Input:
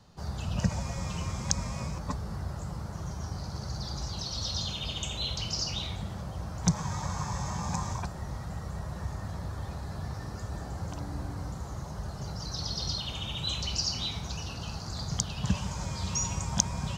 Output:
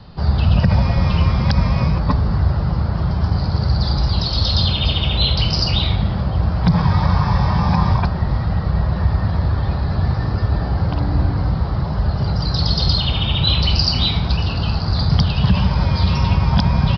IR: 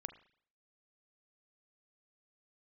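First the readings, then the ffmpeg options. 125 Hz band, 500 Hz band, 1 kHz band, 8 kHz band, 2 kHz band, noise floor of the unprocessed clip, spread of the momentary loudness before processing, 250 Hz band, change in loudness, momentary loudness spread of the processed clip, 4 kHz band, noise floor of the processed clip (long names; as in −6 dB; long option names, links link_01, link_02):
+18.5 dB, +15.0 dB, +14.5 dB, below −10 dB, +14.5 dB, −40 dBFS, 8 LU, +16.0 dB, +16.0 dB, 4 LU, +13.5 dB, −22 dBFS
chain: -filter_complex "[0:a]asplit=2[link_01][link_02];[1:a]atrim=start_sample=2205,asetrate=22491,aresample=44100,lowshelf=frequency=180:gain=10[link_03];[link_02][link_03]afir=irnorm=-1:irlink=0,volume=0.5dB[link_04];[link_01][link_04]amix=inputs=2:normalize=0,aresample=11025,aresample=44100,alimiter=level_in=12.5dB:limit=-1dB:release=50:level=0:latency=1,volume=-4dB"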